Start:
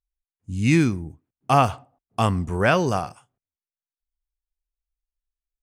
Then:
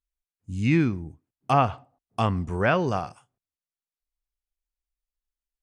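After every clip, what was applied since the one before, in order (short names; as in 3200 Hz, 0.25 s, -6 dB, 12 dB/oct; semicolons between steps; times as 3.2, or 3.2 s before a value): treble ducked by the level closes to 3000 Hz, closed at -15 dBFS; gain -3 dB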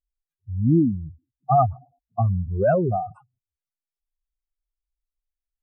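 spectral contrast raised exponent 4; gain +4 dB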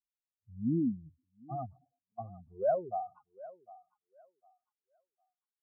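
band-pass sweep 240 Hz -> 1400 Hz, 1.37–3.6; thinning echo 0.753 s, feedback 29%, high-pass 700 Hz, level -15 dB; gain -7.5 dB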